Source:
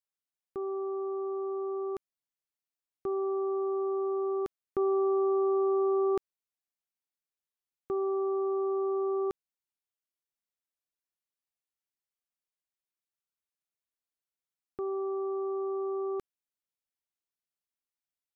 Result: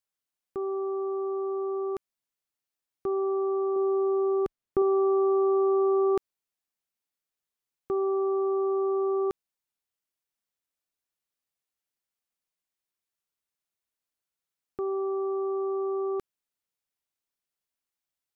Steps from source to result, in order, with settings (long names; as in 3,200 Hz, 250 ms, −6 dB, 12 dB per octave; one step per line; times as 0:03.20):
0:03.76–0:04.82: spectral tilt −1.5 dB per octave
level +3.5 dB